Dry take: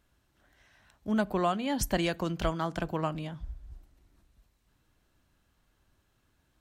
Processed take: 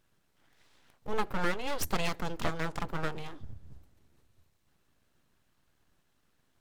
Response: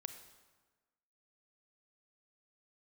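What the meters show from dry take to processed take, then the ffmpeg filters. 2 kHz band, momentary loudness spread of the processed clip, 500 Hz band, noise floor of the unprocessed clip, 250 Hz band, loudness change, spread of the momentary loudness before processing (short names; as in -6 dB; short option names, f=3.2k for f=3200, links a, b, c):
+1.5 dB, 17 LU, -4.5 dB, -73 dBFS, -8.0 dB, -4.0 dB, 15 LU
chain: -af "aeval=exprs='abs(val(0))':c=same,bandreject=f=50:t=h:w=6,bandreject=f=100:t=h:w=6"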